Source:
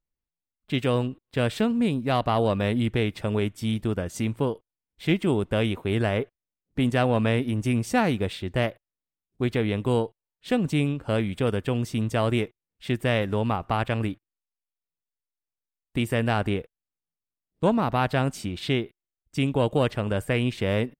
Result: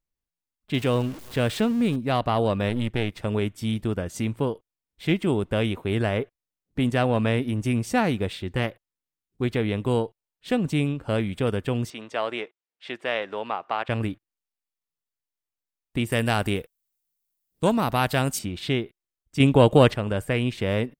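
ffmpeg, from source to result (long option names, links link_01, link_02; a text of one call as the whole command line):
ffmpeg -i in.wav -filter_complex "[0:a]asettb=1/sr,asplit=3[link_01][link_02][link_03];[link_01]atrim=end=0.744[link_04];[link_02]atrim=start=0.74:end=1.96,asetpts=PTS-STARTPTS,afade=type=in:duration=0.004:curve=qsin,afade=type=out:start_time=1.216:duration=0.004:curve=qsin,aeval=exprs='val(0)+0.5*0.0168*sgn(val(0))':channel_layout=same[link_05];[link_03]atrim=start=1.956[link_06];[link_04][link_05]acrossfade=duration=0.004:curve1=hsin:curve2=qsin[link_07];[link_07][link_06]acrossfade=duration=0.004:curve1=qsin:curve2=hsin,asettb=1/sr,asplit=3[link_08][link_09][link_10];[link_08]atrim=end=2.694[link_11];[link_09]atrim=start=2.69:end=3.25,asetpts=PTS-STARTPTS,afade=type=in:duration=0.004:curve=qsin,afade=type=out:start_time=0.556:duration=0.004:curve=qsin,aeval=exprs='if(lt(val(0),0),0.447*val(0),val(0))':channel_layout=same[link_12];[link_10]atrim=start=3.246[link_13];[link_11][link_12]acrossfade=duration=0.004:curve1=hsin:curve2=qsin[link_14];[link_14][link_13]acrossfade=duration=0.004:curve1=qsin:curve2=hsin,asettb=1/sr,asplit=3[link_15][link_16][link_17];[link_15]atrim=end=8.454[link_18];[link_16]atrim=start=8.45:end=9.44,asetpts=PTS-STARTPTS,afade=type=in:duration=0.004:curve=qsin,afade=type=out:start_time=0.986:duration=0.004:curve=qsin,bandreject=frequency=630:width=5.2[link_19];[link_17]atrim=start=9.436[link_20];[link_18][link_19]acrossfade=duration=0.004:curve1=hsin:curve2=qsin[link_21];[link_21][link_20]acrossfade=duration=0.004:curve1=qsin:curve2=hsin,asettb=1/sr,asplit=3[link_22][link_23][link_24];[link_22]atrim=end=11.904[link_25];[link_23]atrim=start=11.9:end=13.89,asetpts=PTS-STARTPTS,afade=type=in:duration=0.004:curve=qsin,afade=type=out:start_time=1.986:duration=0.004:curve=qsin,highpass=510,lowpass=4500[link_26];[link_24]atrim=start=13.886[link_27];[link_25][link_26]acrossfade=duration=0.004:curve1=hsin:curve2=qsin[link_28];[link_28][link_27]acrossfade=duration=0.004:curve1=qsin:curve2=hsin,asettb=1/sr,asplit=3[link_29][link_30][link_31];[link_29]atrim=end=16.124[link_32];[link_30]atrim=start=16.12:end=18.39,asetpts=PTS-STARTPTS,afade=type=in:duration=0.004:curve=qsin,afade=type=out:start_time=2.266:duration=0.004:curve=qsin,aemphasis=mode=production:type=75kf[link_33];[link_31]atrim=start=18.386[link_34];[link_32][link_33]acrossfade=duration=0.004:curve1=hsin:curve2=qsin[link_35];[link_35][link_34]acrossfade=duration=0.004:curve1=qsin:curve2=hsin,asplit=3[link_36][link_37][link_38];[link_36]atrim=end=19.402[link_39];[link_37]atrim=start=19.398:end=19.942,asetpts=PTS-STARTPTS,volume=7dB[link_40];[link_38]atrim=start=19.938[link_41];[link_39][link_40]acrossfade=duration=0.004:curve1=hsin:curve2=hsin[link_42];[link_42][link_41]acrossfade=duration=0.004:curve1=hsin:curve2=hsin" out.wav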